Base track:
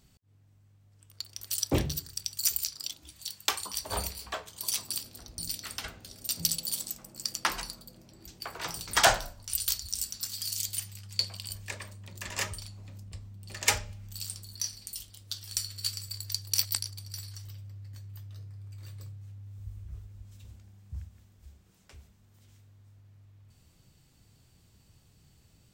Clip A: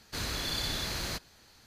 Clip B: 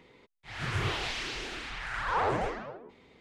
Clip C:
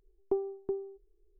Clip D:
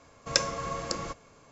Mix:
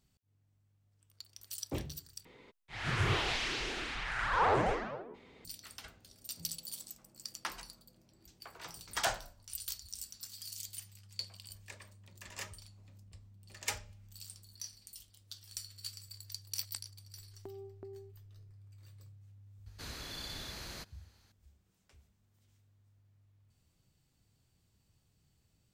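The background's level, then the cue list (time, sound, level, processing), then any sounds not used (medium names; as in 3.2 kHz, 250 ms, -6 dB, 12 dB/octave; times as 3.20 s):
base track -11.5 dB
2.25 s: replace with B
17.14 s: add C -6 dB + compression, threshold -39 dBFS
19.66 s: add A -10.5 dB
not used: D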